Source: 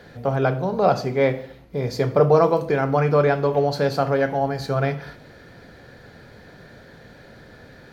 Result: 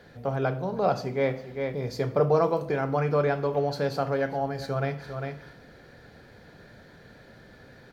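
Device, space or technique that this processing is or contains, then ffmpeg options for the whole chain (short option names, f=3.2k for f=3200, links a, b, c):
ducked delay: -filter_complex "[0:a]asplit=3[a][b][c];[b]adelay=400,volume=-5dB[d];[c]apad=whole_len=367342[e];[d][e]sidechaincompress=threshold=-36dB:ratio=8:attack=16:release=195[f];[a][f]amix=inputs=2:normalize=0,volume=-6.5dB"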